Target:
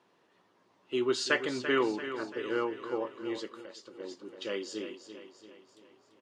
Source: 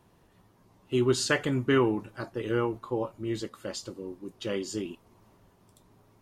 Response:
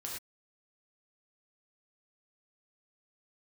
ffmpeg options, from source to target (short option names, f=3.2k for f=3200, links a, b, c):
-filter_complex "[0:a]highpass=380,lowpass=5k,equalizer=f=760:w=1.5:g=-4,aecho=1:1:339|678|1017|1356|1695|2034:0.299|0.152|0.0776|0.0396|0.0202|0.0103,asettb=1/sr,asplit=3[a][b][c];[a]atrim=end=3.594[d];[b]atrim=start=3.59:end=4,asetpts=PTS-STARTPTS,afade=t=in:d=0.004:c=qsin,afade=t=out:st=0.406:d=0.004:c=qsin,acompressor=threshold=-46dB:ratio=4[e];[c]atrim=start=3.996[f];[d][e]acrossfade=d=0.004:c1=hsin:c2=qsin[g];[g][f]acrossfade=d=0.004:c1=qsin:c2=hsin"